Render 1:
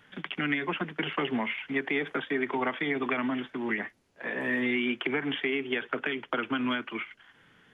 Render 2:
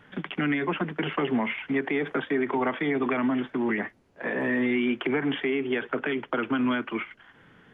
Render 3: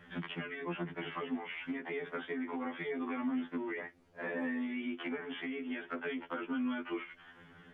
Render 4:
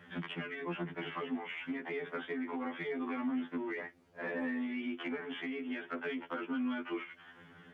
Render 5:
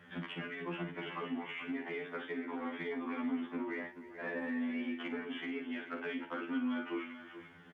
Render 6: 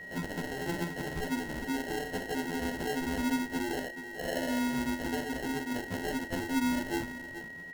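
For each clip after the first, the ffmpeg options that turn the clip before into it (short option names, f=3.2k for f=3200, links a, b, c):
-filter_complex "[0:a]highshelf=f=2.2k:g=-12,asplit=2[a][b];[b]alimiter=level_in=4dB:limit=-24dB:level=0:latency=1:release=46,volume=-4dB,volume=3dB[c];[a][c]amix=inputs=2:normalize=0"
-af "acompressor=threshold=-34dB:ratio=5,afftfilt=real='re*2*eq(mod(b,4),0)':imag='im*2*eq(mod(b,4),0)':win_size=2048:overlap=0.75"
-filter_complex "[0:a]highpass=75,asplit=2[a][b];[b]asoftclip=type=tanh:threshold=-35dB,volume=-11dB[c];[a][c]amix=inputs=2:normalize=0,volume=-1.5dB"
-af "aecho=1:1:41|56|302|432:0.299|0.299|0.133|0.266,volume=-2dB"
-af "acrusher=samples=37:mix=1:aa=0.000001,aeval=exprs='val(0)+0.00398*sin(2*PI*1900*n/s)':c=same,volume=5.5dB"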